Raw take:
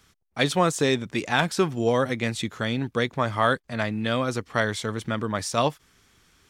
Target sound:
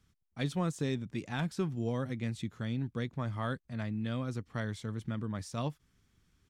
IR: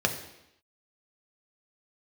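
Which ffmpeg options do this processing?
-af "firequalizer=gain_entry='entry(150,0);entry(420,-10);entry(620,-12)':delay=0.05:min_phase=1,volume=-4.5dB"

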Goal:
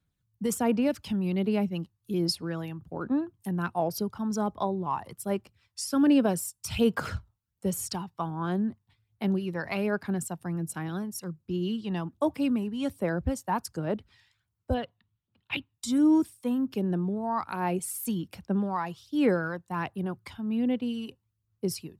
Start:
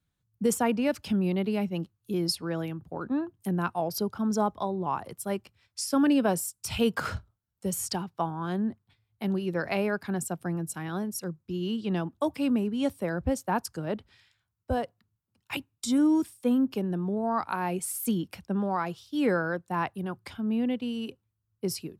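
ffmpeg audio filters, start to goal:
ffmpeg -i in.wav -filter_complex "[0:a]asettb=1/sr,asplit=3[link_01][link_02][link_03];[link_01]atrim=end=14.744[link_04];[link_02]atrim=start=14.74:end=15.74,asetpts=PTS-STARTPTS,afade=type=in:duration=0.004:curve=qsin,afade=type=out:start_time=0.996:duration=0.004:curve=qsin,highshelf=frequency=4800:width_type=q:width=3:gain=-11.5[link_05];[link_03]atrim=start=15.736[link_06];[link_04][link_05]acrossfade=duration=0.004:curve1=hsin:curve2=qsin[link_07];[link_07][link_06]acrossfade=duration=0.004:curve1=qsin:curve2=hsin,aphaser=in_gain=1:out_gain=1:delay=1.1:decay=0.41:speed=1.3:type=sinusoidal,volume=-2.5dB" out.wav

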